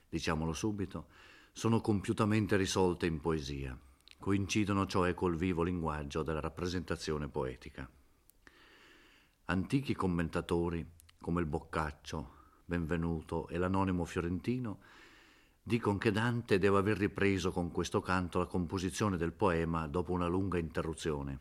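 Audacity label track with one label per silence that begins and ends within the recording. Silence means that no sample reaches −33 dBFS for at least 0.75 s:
7.830000	9.490000	silence
14.730000	15.700000	silence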